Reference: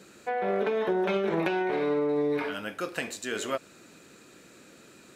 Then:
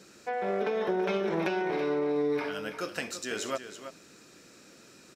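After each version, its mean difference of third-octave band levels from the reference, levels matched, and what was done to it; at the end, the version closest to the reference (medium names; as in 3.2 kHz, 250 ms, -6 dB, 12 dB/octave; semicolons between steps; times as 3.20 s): 2.0 dB: peaking EQ 5.4 kHz +10.5 dB 0.34 oct; on a send: delay 330 ms -10.5 dB; on the sum: trim -2.5 dB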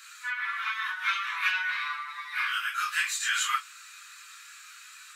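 16.5 dB: phase randomisation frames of 100 ms; steep high-pass 1.1 kHz 72 dB/octave; trim +8.5 dB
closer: first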